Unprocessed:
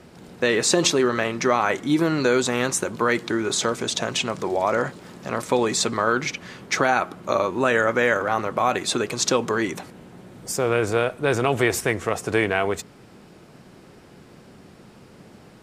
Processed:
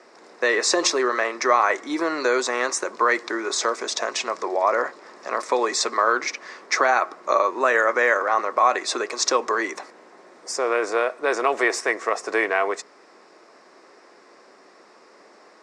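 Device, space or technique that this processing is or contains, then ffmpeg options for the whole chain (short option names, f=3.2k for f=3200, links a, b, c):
phone speaker on a table: -filter_complex "[0:a]asettb=1/sr,asplit=3[a][b][c];[a]atrim=end=4.454[d];[b]atrim=start=4.45:end=5.17,asetpts=PTS-STARTPTS,afade=t=in:d=0.004:c=qsin,afade=t=out:st=0.716:d=0.004:c=qsin,highshelf=f=5.6k:g=-6[e];[c]atrim=start=5.166[f];[d][e]acrossfade=d=0.004:c1=hsin:c2=qsin[g];[g][f]acrossfade=d=0.004:c1=qsin:c2=hsin,highpass=f=340:w=0.5412,highpass=f=340:w=1.3066,equalizer=f=640:t=q:w=4:g=3,equalizer=f=1.1k:t=q:w=4:g=8,equalizer=f=1.9k:t=q:w=4:g=6,equalizer=f=3.1k:t=q:w=4:g=-8,equalizer=f=5.3k:t=q:w=4:g=6,lowpass=f=8.1k:w=0.5412,lowpass=f=8.1k:w=1.3066,volume=-1.5dB"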